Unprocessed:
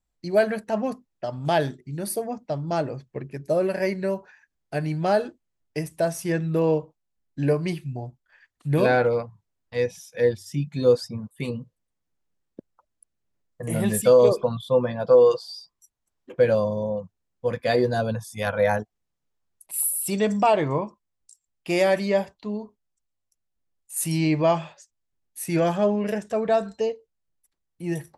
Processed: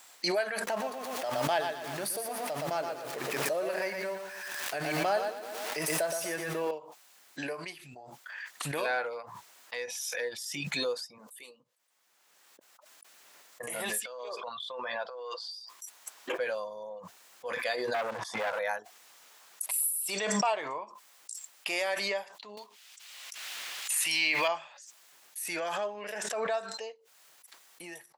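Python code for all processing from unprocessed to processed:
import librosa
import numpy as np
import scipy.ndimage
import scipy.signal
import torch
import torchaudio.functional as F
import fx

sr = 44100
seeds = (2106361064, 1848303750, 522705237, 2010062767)

y = fx.chain(x, sr, fx.zero_step(step_db=-37.0),
    fx.low_shelf(hz=420.0, db=9.0),
    fx.echo_crushed(ms=119, feedback_pct=35, bits=8, wet_db=-5.5), at=(0.67, 6.71))
y = fx.chain(y, sr, fx.highpass(hz=350.0, slope=12),
    fx.peak_eq(hz=1300.0, db=-10.0, octaves=2.6), at=(11.18, 11.6))
y = fx.chain(y, sr, fx.lowpass(hz=4700.0, slope=12),
    fx.low_shelf(hz=430.0, db=-10.0),
    fx.over_compress(threshold_db=-29.0, ratio=-1.0), at=(14.0, 15.51))
y = fx.chain(y, sr, fx.lowpass(hz=1100.0, slope=12),
    fx.leveller(passes=3),
    fx.band_squash(depth_pct=40), at=(17.94, 18.59))
y = fx.chain(y, sr, fx.block_float(bits=7),
    fx.peak_eq(hz=2800.0, db=13.5, octaves=2.3),
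    fx.band_squash(depth_pct=40), at=(22.57, 24.48))
y = scipy.signal.sosfilt(scipy.signal.butter(2, 870.0, 'highpass', fs=sr, output='sos'), y)
y = fx.pre_swell(y, sr, db_per_s=24.0)
y = F.gain(torch.from_numpy(y), -5.5).numpy()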